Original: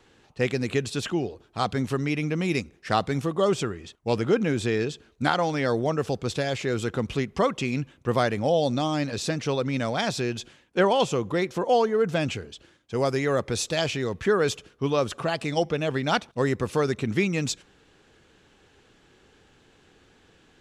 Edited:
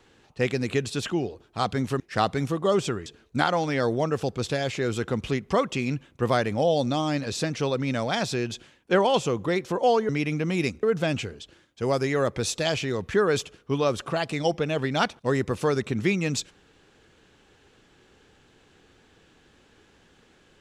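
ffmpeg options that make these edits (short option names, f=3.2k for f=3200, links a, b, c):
-filter_complex "[0:a]asplit=5[a][b][c][d][e];[a]atrim=end=2.002[f];[b]atrim=start=2.738:end=3.802[g];[c]atrim=start=4.918:end=11.952[h];[d]atrim=start=1.998:end=2.742[i];[e]atrim=start=11.948[j];[f][g]acrossfade=d=0.004:c1=hsin:c2=hsin[k];[k][h]acrossfade=d=0.004:c1=hsin:c2=hsin[l];[l][i]acrossfade=d=0.004:c1=hsin:c2=hsin[m];[m][j]acrossfade=d=0.004:c1=hsin:c2=hsin"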